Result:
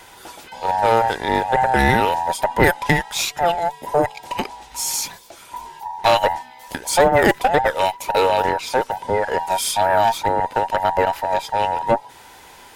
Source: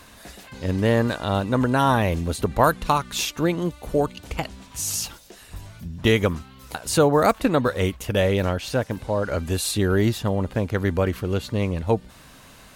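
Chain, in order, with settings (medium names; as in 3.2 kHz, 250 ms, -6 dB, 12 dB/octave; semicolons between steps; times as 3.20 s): every band turned upside down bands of 1 kHz; valve stage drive 10 dB, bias 0.55; trim +6 dB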